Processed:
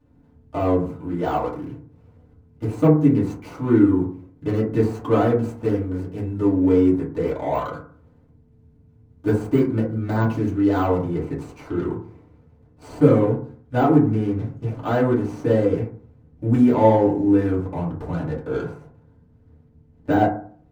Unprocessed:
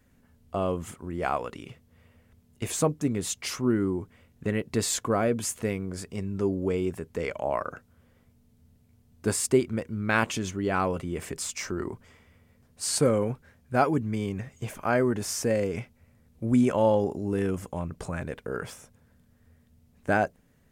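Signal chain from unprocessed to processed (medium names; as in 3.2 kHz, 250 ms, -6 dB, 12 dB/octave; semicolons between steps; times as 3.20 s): median filter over 25 samples; de-esser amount 100%; treble shelf 10 kHz -3.5 dB, from 11.11 s -9.5 dB; FDN reverb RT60 0.48 s, low-frequency decay 1.2×, high-frequency decay 0.3×, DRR -7 dB; trim -1.5 dB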